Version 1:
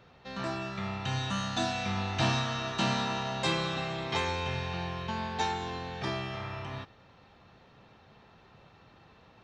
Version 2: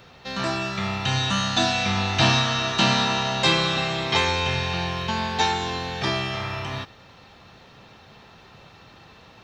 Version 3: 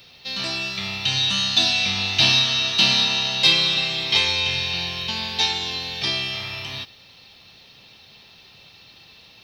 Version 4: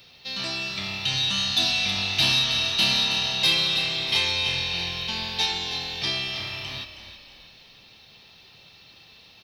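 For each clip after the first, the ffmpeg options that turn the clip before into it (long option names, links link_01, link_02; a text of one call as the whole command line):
ffmpeg -i in.wav -filter_complex "[0:a]acrossover=split=5800[link_01][link_02];[link_02]acompressor=threshold=-59dB:ratio=4:attack=1:release=60[link_03];[link_01][link_03]amix=inputs=2:normalize=0,highshelf=frequency=3000:gain=9.5,volume=7.5dB" out.wav
ffmpeg -i in.wav -af "highshelf=frequency=2000:width_type=q:width=1.5:gain=9.5,aexciter=amount=1.2:drive=4.5:freq=4000,volume=-6.5dB" out.wav
ffmpeg -i in.wav -filter_complex "[0:a]asoftclip=type=tanh:threshold=-9.5dB,asplit=5[link_01][link_02][link_03][link_04][link_05];[link_02]adelay=319,afreqshift=-41,volume=-11dB[link_06];[link_03]adelay=638,afreqshift=-82,volume=-18.3dB[link_07];[link_04]adelay=957,afreqshift=-123,volume=-25.7dB[link_08];[link_05]adelay=1276,afreqshift=-164,volume=-33dB[link_09];[link_01][link_06][link_07][link_08][link_09]amix=inputs=5:normalize=0,volume=-3dB" out.wav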